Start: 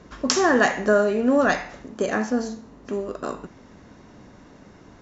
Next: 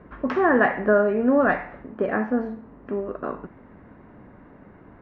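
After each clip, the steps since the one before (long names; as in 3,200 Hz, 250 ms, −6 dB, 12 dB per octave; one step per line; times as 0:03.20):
low-pass filter 2,100 Hz 24 dB per octave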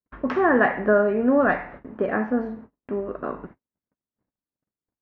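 noise gate −41 dBFS, range −51 dB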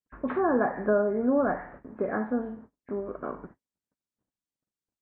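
hearing-aid frequency compression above 1,600 Hz 1.5 to 1
treble cut that deepens with the level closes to 1,200 Hz, closed at −16.5 dBFS
level −5 dB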